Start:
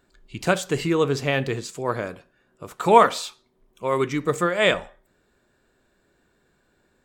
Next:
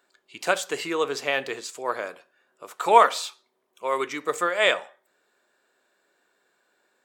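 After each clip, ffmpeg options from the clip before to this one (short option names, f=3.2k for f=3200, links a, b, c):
-af "highpass=520"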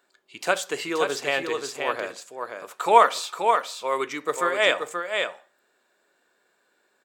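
-af "aecho=1:1:529:0.531"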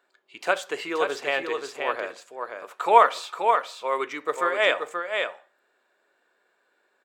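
-af "bass=f=250:g=-10,treble=f=4k:g=-9"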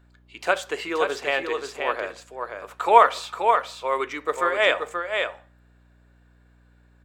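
-af "aeval=exprs='val(0)+0.00141*(sin(2*PI*60*n/s)+sin(2*PI*2*60*n/s)/2+sin(2*PI*3*60*n/s)/3+sin(2*PI*4*60*n/s)/4+sin(2*PI*5*60*n/s)/5)':c=same,volume=1.5dB"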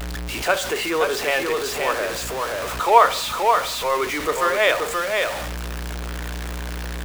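-af "aeval=exprs='val(0)+0.5*0.0708*sgn(val(0))':c=same"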